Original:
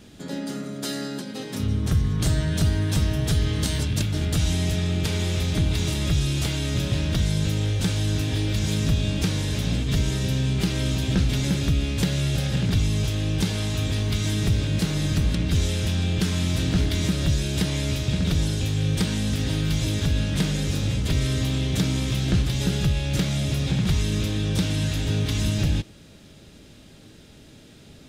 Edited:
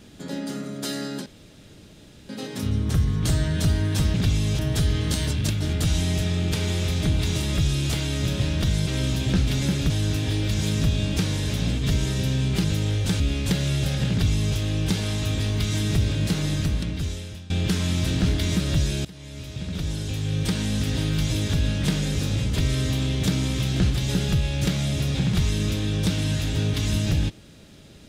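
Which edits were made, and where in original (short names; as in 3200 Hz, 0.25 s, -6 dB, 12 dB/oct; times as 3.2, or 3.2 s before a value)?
1.26 insert room tone 1.03 s
7.39–7.95 swap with 10.69–11.72
12.63–13.08 copy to 3.11
14.96–16.02 fade out, to -21 dB
17.57–19.24 fade in linear, from -22.5 dB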